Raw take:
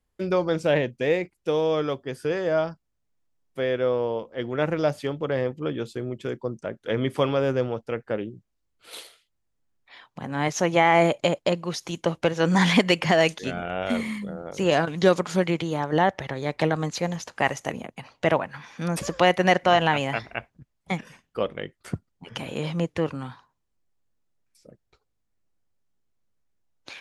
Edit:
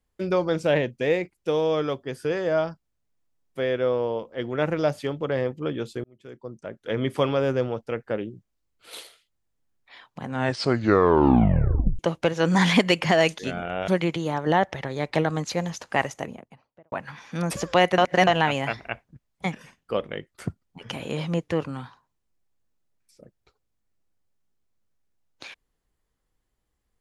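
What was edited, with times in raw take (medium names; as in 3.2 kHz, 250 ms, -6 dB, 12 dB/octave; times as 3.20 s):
6.04–7.09 s: fade in
10.23 s: tape stop 1.76 s
13.88–15.34 s: delete
17.37–18.38 s: studio fade out
19.44–19.73 s: reverse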